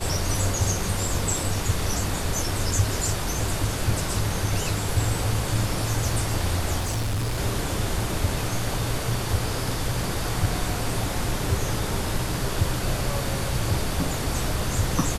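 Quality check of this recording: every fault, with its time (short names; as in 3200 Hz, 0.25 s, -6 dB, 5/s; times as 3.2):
6.79–7.4 clipped -22.5 dBFS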